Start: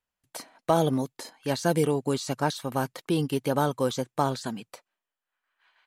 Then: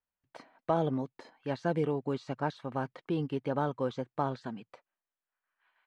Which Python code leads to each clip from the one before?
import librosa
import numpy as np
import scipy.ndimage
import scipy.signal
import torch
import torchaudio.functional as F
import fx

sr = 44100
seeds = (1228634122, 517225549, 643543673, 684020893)

y = scipy.signal.sosfilt(scipy.signal.butter(2, 2400.0, 'lowpass', fs=sr, output='sos'), x)
y = F.gain(torch.from_numpy(y), -6.0).numpy()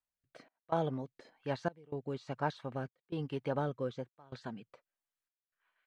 y = fx.peak_eq(x, sr, hz=270.0, db=-4.5, octaves=1.2)
y = fx.step_gate(y, sr, bpm=125, pattern='xxxx..xxxx', floor_db=-24.0, edge_ms=4.5)
y = fx.rotary(y, sr, hz=1.1)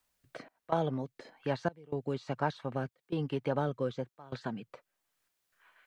y = fx.band_squash(x, sr, depth_pct=40)
y = F.gain(torch.from_numpy(y), 3.5).numpy()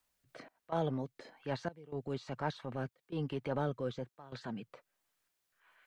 y = fx.transient(x, sr, attack_db=-6, sustain_db=2)
y = F.gain(torch.from_numpy(y), -2.0).numpy()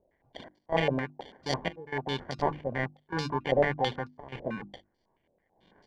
y = fx.sample_hold(x, sr, seeds[0], rate_hz=1300.0, jitter_pct=0)
y = fx.hum_notches(y, sr, base_hz=50, count=7)
y = fx.filter_held_lowpass(y, sr, hz=9.1, low_hz=580.0, high_hz=4800.0)
y = F.gain(torch.from_numpy(y), 5.0).numpy()